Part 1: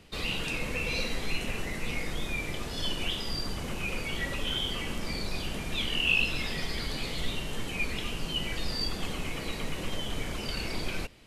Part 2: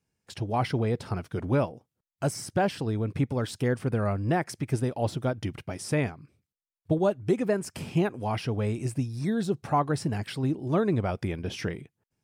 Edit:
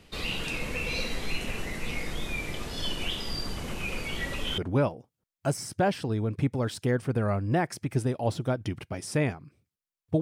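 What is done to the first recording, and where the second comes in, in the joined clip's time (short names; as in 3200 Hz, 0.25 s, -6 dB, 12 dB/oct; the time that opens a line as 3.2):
part 1
4.58 switch to part 2 from 1.35 s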